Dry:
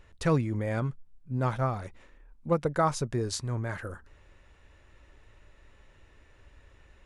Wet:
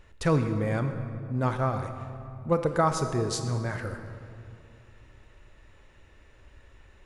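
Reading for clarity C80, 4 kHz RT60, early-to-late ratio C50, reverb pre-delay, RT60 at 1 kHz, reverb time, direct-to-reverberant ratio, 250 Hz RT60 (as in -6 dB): 8.5 dB, 1.6 s, 7.5 dB, 28 ms, 2.4 s, 2.5 s, 7.0 dB, 3.0 s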